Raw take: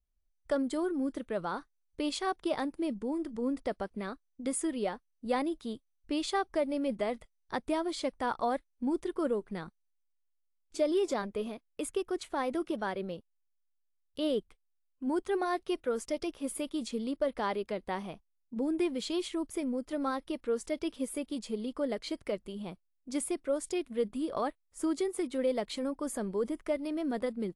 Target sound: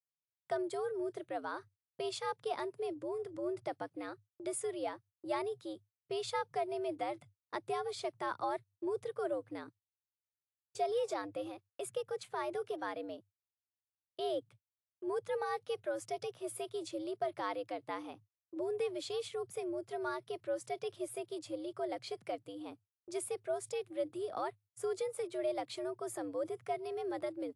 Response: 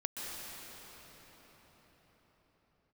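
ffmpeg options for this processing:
-af "afreqshift=99,agate=range=0.0224:threshold=0.002:ratio=16:detection=peak,volume=0.531"

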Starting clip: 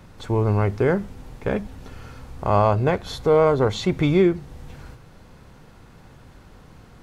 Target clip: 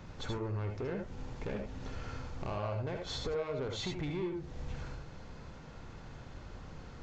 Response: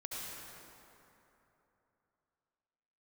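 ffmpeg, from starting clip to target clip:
-filter_complex "[0:a]acompressor=threshold=0.0447:ratio=16,aresample=16000,asoftclip=type=tanh:threshold=0.0316,aresample=44100[s0];[1:a]atrim=start_sample=2205,atrim=end_sample=3969[s1];[s0][s1]afir=irnorm=-1:irlink=0,volume=1.41"

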